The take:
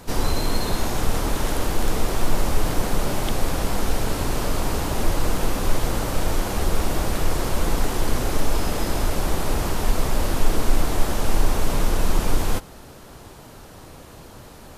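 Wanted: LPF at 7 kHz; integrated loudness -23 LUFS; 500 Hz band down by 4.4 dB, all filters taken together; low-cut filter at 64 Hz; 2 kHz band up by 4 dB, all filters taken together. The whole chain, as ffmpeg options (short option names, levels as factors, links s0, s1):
-af "highpass=64,lowpass=7000,equalizer=f=500:t=o:g=-6,equalizer=f=2000:t=o:g=5.5,volume=1.68"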